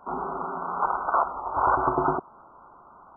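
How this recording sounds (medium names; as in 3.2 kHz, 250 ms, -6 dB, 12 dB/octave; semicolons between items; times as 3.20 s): noise floor -52 dBFS; spectral tilt -1.0 dB/octave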